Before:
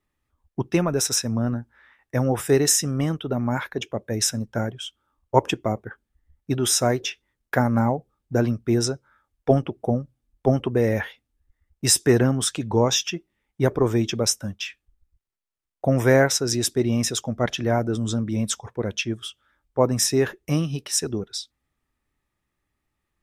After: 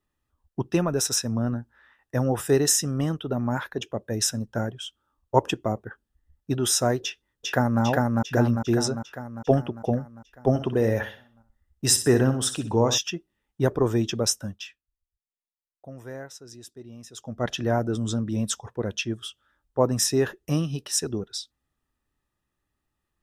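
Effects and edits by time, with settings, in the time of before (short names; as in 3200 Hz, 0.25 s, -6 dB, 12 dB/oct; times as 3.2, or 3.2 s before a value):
7.03–7.82 echo throw 0.4 s, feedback 60%, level -1 dB
10.49–12.98 feedback echo 62 ms, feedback 35%, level -11 dB
14.42–17.54 dip -19.5 dB, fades 0.43 s linear
whole clip: notch 2200 Hz, Q 5.5; gain -2 dB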